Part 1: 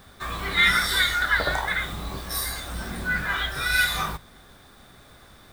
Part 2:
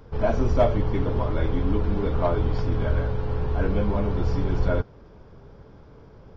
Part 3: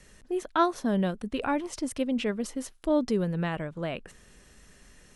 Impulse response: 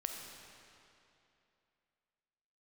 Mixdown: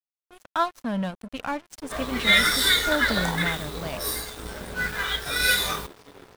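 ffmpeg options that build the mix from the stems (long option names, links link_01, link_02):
-filter_complex "[0:a]adynamicequalizer=threshold=0.0178:dfrequency=2500:dqfactor=0.7:tfrequency=2500:tqfactor=0.7:attack=5:release=100:ratio=0.375:range=3.5:mode=boostabove:tftype=highshelf,adelay=1700,volume=-1.5dB[link_01];[1:a]highpass=340,asoftclip=type=tanh:threshold=-26dB,adelay=1700,volume=-5dB,asplit=2[link_02][link_03];[link_03]volume=-12dB[link_04];[2:a]equalizer=frequency=380:width=3:gain=-15,volume=1.5dB,asplit=2[link_05][link_06];[link_06]volume=-19dB[link_07];[3:a]atrim=start_sample=2205[link_08];[link_04][link_07]amix=inputs=2:normalize=0[link_09];[link_09][link_08]afir=irnorm=-1:irlink=0[link_10];[link_01][link_02][link_05][link_10]amix=inputs=4:normalize=0,aeval=exprs='sgn(val(0))*max(abs(val(0))-0.0141,0)':channel_layout=same"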